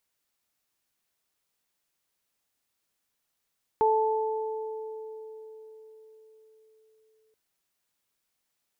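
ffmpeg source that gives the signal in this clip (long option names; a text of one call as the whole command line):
ffmpeg -f lavfi -i "aevalsrc='0.0794*pow(10,-3*t/4.87)*sin(2*PI*438*t)+0.0944*pow(10,-3*t/2.51)*sin(2*PI*876*t)':duration=3.53:sample_rate=44100" out.wav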